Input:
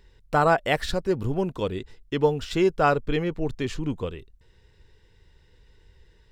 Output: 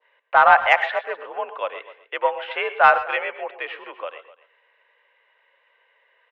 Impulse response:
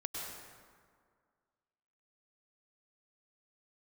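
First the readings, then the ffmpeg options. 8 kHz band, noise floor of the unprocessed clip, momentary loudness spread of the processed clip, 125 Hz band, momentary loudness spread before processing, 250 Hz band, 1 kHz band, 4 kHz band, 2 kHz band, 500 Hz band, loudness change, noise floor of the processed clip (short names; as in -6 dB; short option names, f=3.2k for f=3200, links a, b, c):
under -10 dB, -59 dBFS, 20 LU, under -25 dB, 11 LU, -22.0 dB, +8.5 dB, +1.5 dB, +10.5 dB, -1.0 dB, +5.5 dB, -64 dBFS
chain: -filter_complex "[0:a]highpass=f=600:t=q:w=0.5412,highpass=f=600:t=q:w=1.307,lowpass=f=2.7k:t=q:w=0.5176,lowpass=f=2.7k:t=q:w=0.7071,lowpass=f=2.7k:t=q:w=1.932,afreqshift=58,acontrast=81,aecho=1:1:252:0.119,asplit=2[a][b];[1:a]atrim=start_sample=2205,atrim=end_sample=6174[c];[b][c]afir=irnorm=-1:irlink=0,volume=-2.5dB[d];[a][d]amix=inputs=2:normalize=0,adynamicequalizer=threshold=0.0501:dfrequency=2100:dqfactor=0.76:tfrequency=2100:tqfactor=0.76:attack=5:release=100:ratio=0.375:range=2:mode=boostabove:tftype=bell,volume=-3.5dB"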